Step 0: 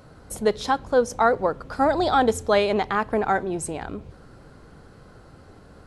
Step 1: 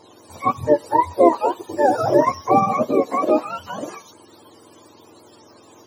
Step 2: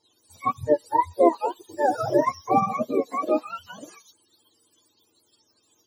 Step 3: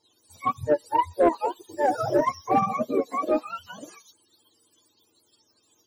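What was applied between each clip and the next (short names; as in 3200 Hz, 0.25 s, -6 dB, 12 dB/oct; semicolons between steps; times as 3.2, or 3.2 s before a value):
spectrum mirrored in octaves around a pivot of 690 Hz; graphic EQ 125/250/500/1000/2000/4000/8000 Hz -3/+10/+10/+9/-3/+6/+8 dB; gain -4.5 dB
per-bin expansion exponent 1.5; gain -3 dB
soft clip -11 dBFS, distortion -18 dB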